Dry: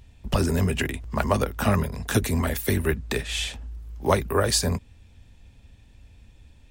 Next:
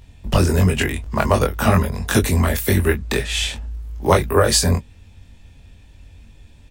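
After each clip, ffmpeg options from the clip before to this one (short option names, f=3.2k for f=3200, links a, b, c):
-af "aecho=1:1:22|36:0.708|0.15,volume=4.5dB"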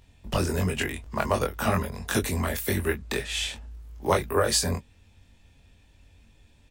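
-af "lowshelf=f=190:g=-6,volume=-7dB"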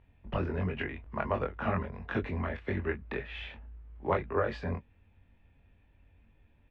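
-af "lowpass=f=2.5k:w=0.5412,lowpass=f=2.5k:w=1.3066,volume=-6dB"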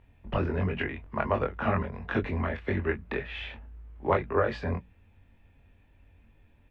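-af "bandreject=f=60:t=h:w=6,bandreject=f=120:t=h:w=6,bandreject=f=180:t=h:w=6,volume=4dB"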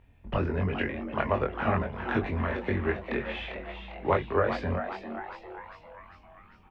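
-filter_complex "[0:a]asplit=7[a][b][c][d][e][f][g];[b]adelay=399,afreqshift=140,volume=-9dB[h];[c]adelay=798,afreqshift=280,volume=-14.5dB[i];[d]adelay=1197,afreqshift=420,volume=-20dB[j];[e]adelay=1596,afreqshift=560,volume=-25.5dB[k];[f]adelay=1995,afreqshift=700,volume=-31.1dB[l];[g]adelay=2394,afreqshift=840,volume=-36.6dB[m];[a][h][i][j][k][l][m]amix=inputs=7:normalize=0"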